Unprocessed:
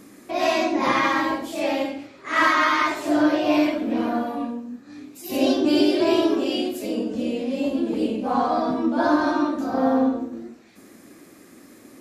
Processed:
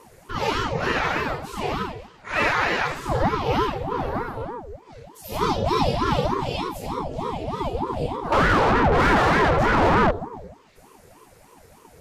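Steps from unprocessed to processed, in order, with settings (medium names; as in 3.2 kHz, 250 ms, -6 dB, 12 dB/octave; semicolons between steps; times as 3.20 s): 8.32–10.11 s: overdrive pedal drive 32 dB, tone 1.6 kHz, clips at -8 dBFS; ring modulator with a swept carrier 450 Hz, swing 65%, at 3.3 Hz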